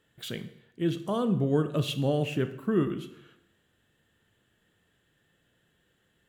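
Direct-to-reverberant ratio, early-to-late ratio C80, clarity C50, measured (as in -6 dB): 10.0 dB, 15.0 dB, 12.5 dB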